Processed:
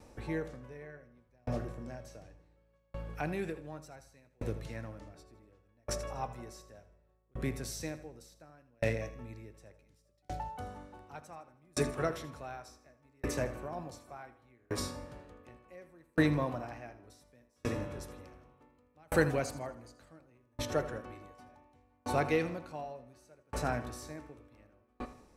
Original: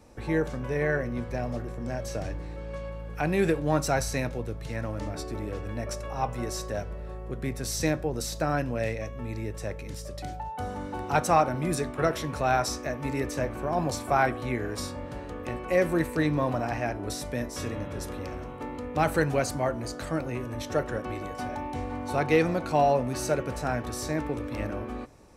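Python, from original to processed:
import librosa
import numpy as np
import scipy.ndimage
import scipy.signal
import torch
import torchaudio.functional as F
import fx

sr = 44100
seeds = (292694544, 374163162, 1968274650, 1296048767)

y = fx.echo_feedback(x, sr, ms=80, feedback_pct=49, wet_db=-12.5)
y = fx.tremolo_decay(y, sr, direction='decaying', hz=0.68, depth_db=39)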